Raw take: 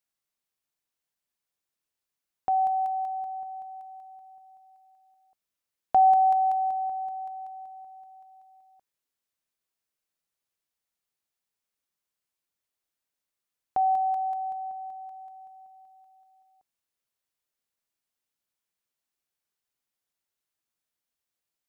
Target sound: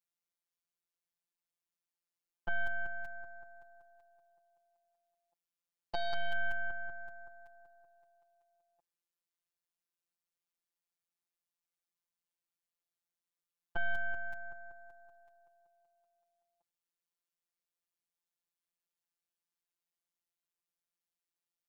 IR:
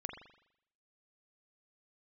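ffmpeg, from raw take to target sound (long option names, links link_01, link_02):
-af "aeval=exprs='0.211*(cos(1*acos(clip(val(0)/0.211,-1,1)))-cos(1*PI/2))+0.0106*(cos(3*acos(clip(val(0)/0.211,-1,1)))-cos(3*PI/2))+0.0119*(cos(5*acos(clip(val(0)/0.211,-1,1)))-cos(5*PI/2))+0.0531*(cos(6*acos(clip(val(0)/0.211,-1,1)))-cos(6*PI/2))+0.00119*(cos(8*acos(clip(val(0)/0.211,-1,1)))-cos(8*PI/2))':channel_layout=same,afftfilt=real='hypot(re,im)*cos(PI*b)':imag='0':win_size=1024:overlap=0.75,volume=-6dB"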